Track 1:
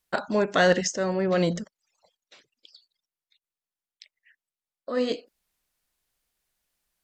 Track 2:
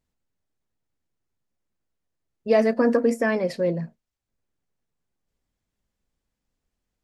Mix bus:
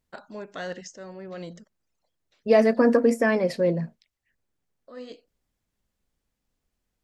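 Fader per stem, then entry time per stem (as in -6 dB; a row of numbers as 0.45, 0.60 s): -14.5, +1.0 dB; 0.00, 0.00 s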